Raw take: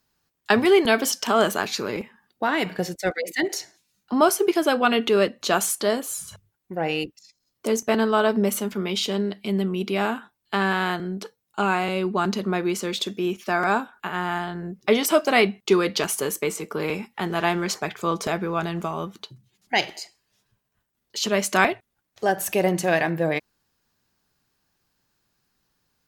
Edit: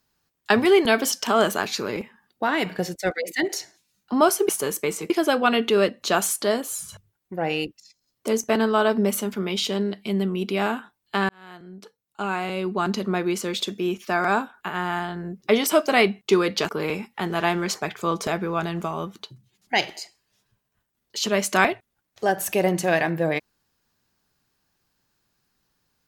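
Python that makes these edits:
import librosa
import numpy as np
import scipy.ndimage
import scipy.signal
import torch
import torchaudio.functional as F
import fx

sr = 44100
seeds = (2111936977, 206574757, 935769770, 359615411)

y = fx.edit(x, sr, fx.fade_in_span(start_s=10.68, length_s=1.72),
    fx.move(start_s=16.08, length_s=0.61, to_s=4.49), tone=tone)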